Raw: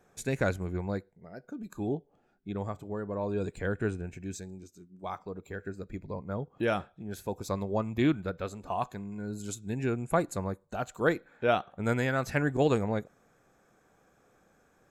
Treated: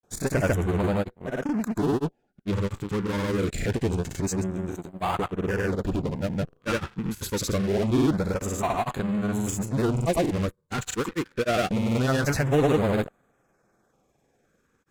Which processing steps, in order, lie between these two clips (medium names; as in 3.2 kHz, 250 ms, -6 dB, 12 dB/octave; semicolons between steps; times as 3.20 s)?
de-esser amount 95%; in parallel at -11 dB: fuzz box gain 44 dB, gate -53 dBFS; on the sum: LFO notch sine 0.25 Hz 620–5700 Hz; granulator, pitch spread up and down by 0 st